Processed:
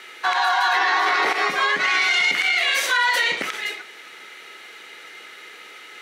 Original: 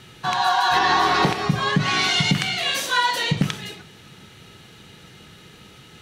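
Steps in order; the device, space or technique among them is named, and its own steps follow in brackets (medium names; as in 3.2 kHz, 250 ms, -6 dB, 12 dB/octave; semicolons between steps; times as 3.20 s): laptop speaker (high-pass 370 Hz 24 dB/octave; peaking EQ 1.4 kHz +5 dB 0.57 oct; peaking EQ 2.1 kHz +11.5 dB 0.39 oct; peak limiter -13.5 dBFS, peak gain reduction 11 dB); trim +2.5 dB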